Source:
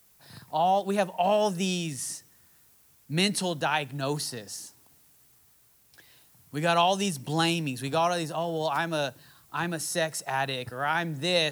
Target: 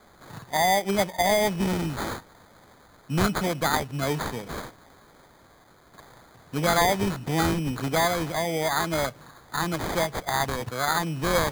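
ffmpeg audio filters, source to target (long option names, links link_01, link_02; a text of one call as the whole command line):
ffmpeg -i in.wav -filter_complex "[0:a]asplit=2[link_01][link_02];[link_02]acompressor=threshold=-35dB:ratio=6,volume=0.5dB[link_03];[link_01][link_03]amix=inputs=2:normalize=0,acrusher=samples=16:mix=1:aa=0.000001" out.wav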